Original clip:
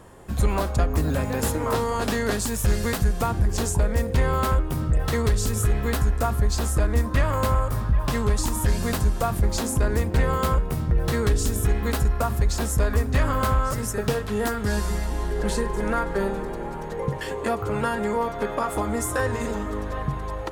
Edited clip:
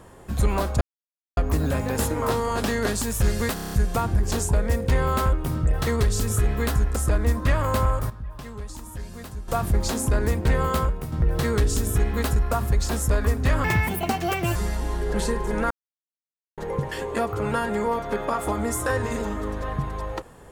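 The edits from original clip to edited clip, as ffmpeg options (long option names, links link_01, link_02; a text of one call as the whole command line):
ffmpeg -i in.wav -filter_complex "[0:a]asplit=16[link_01][link_02][link_03][link_04][link_05][link_06][link_07][link_08][link_09][link_10][link_11][link_12][link_13][link_14][link_15][link_16];[link_01]atrim=end=0.81,asetpts=PTS-STARTPTS,afade=type=out:start_time=0.806:duration=0.004:curve=hsin,apad=pad_dur=0.56[link_17];[link_02]atrim=start=0.81:end=3.012,asetpts=PTS-STARTPTS,afade=type=in:duration=0.004:curve=hsin[link_18];[link_03]atrim=start=2.978:end=3.012[link_19];[link_04]atrim=start=2.978:end=3.012[link_20];[link_05]atrim=start=2.978:end=3.012[link_21];[link_06]atrim=start=2.978:end=3.012[link_22];[link_07]atrim=start=2.978:end=3.012[link_23];[link_08]atrim=start=2.978:end=6.222[link_24];[link_09]atrim=start=6.648:end=7.79,asetpts=PTS-STARTPTS,afade=type=out:start_time=0.942:duration=0.2:curve=log:silence=0.211349[link_25];[link_10]atrim=start=7.79:end=9.17,asetpts=PTS-STARTPTS,volume=-13.5dB[link_26];[link_11]atrim=start=9.17:end=10.81,asetpts=PTS-STARTPTS,afade=type=in:duration=0.2:curve=log:silence=0.211349,afade=type=out:start_time=1.25:duration=0.39:silence=0.421697[link_27];[link_12]atrim=start=10.81:end=13.334,asetpts=PTS-STARTPTS,afade=type=in:duration=0.004:curve=hsin:silence=0.421697[link_28];[link_13]atrim=start=13.33:end=14.85,asetpts=PTS-STARTPTS,asetrate=73206,aresample=44100[link_29];[link_14]atrim=start=14.846:end=16,asetpts=PTS-STARTPTS,afade=type=out:start_time=1.15:duration=0.004:curve=hsin[link_30];[link_15]atrim=start=16:end=16.87,asetpts=PTS-STARTPTS,volume=0[link_31];[link_16]atrim=start=16.87,asetpts=PTS-STARTPTS,afade=type=in:duration=0.004:curve=hsin[link_32];[link_17][link_18]concat=n=2:v=0:a=1[link_33];[link_33][link_19]acrossfade=duration=0.004:curve1=hsin:curve2=hsin[link_34];[link_34][link_20]acrossfade=duration=0.004:curve1=hsin:curve2=hsin[link_35];[link_35][link_21]acrossfade=duration=0.004:curve1=hsin:curve2=hsin[link_36];[link_36][link_22]acrossfade=duration=0.004:curve1=hsin:curve2=hsin[link_37];[link_37][link_23]acrossfade=duration=0.004:curve1=hsin:curve2=hsin[link_38];[link_38][link_24]acrossfade=duration=0.004:curve1=hsin:curve2=hsin[link_39];[link_25][link_26][link_27][link_28]concat=n=4:v=0:a=1[link_40];[link_39][link_40]acrossfade=duration=0.004:curve1=hsin:curve2=hsin[link_41];[link_41][link_29]acrossfade=duration=0.004:curve1=hsin:curve2=hsin[link_42];[link_30][link_31][link_32]concat=n=3:v=0:a=1[link_43];[link_42][link_43]acrossfade=duration=0.004:curve1=hsin:curve2=hsin" out.wav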